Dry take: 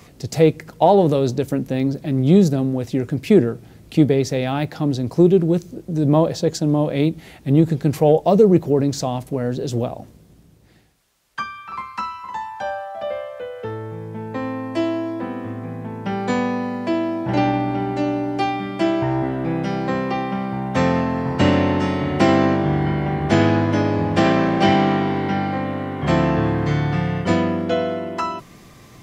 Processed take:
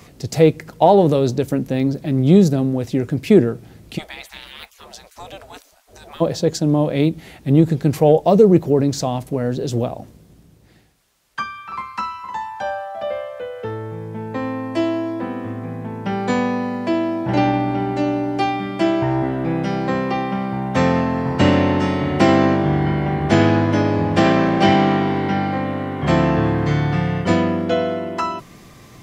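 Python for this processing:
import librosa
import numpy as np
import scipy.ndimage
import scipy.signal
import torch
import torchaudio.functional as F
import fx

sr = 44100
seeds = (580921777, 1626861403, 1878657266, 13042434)

y = fx.spec_gate(x, sr, threshold_db=-25, keep='weak', at=(3.97, 6.2), fade=0.02)
y = y * librosa.db_to_amplitude(1.5)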